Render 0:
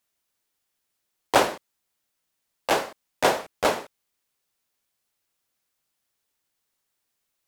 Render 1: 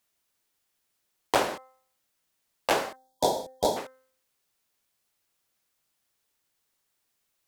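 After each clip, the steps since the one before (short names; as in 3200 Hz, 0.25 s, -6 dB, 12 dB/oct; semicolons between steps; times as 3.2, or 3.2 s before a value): de-hum 259.9 Hz, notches 8; spectral gain 2.96–3.77, 1000–3200 Hz -21 dB; compressor 4:1, threshold -22 dBFS, peak gain reduction 8.5 dB; gain +1.5 dB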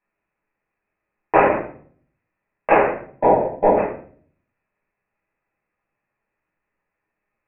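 sample leveller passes 1; rippled Chebyshev low-pass 2600 Hz, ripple 3 dB; shoebox room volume 54 m³, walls mixed, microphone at 1.3 m; gain +2 dB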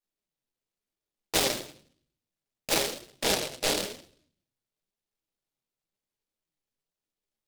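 flange 0.97 Hz, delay 1.9 ms, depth 6.7 ms, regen +55%; noise-modulated delay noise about 3600 Hz, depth 0.27 ms; gain -8 dB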